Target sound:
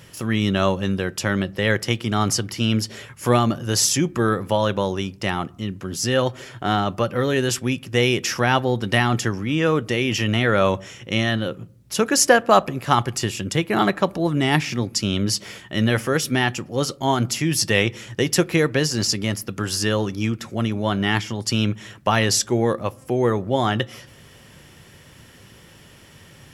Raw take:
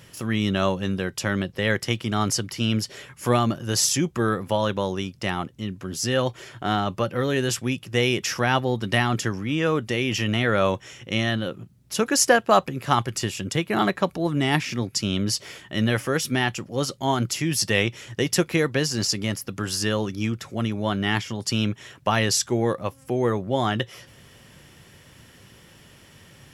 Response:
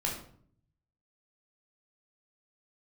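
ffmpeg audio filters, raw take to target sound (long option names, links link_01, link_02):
-filter_complex "[0:a]asplit=2[link_01][link_02];[1:a]atrim=start_sample=2205,lowpass=2300[link_03];[link_02][link_03]afir=irnorm=-1:irlink=0,volume=-24dB[link_04];[link_01][link_04]amix=inputs=2:normalize=0,volume=2.5dB"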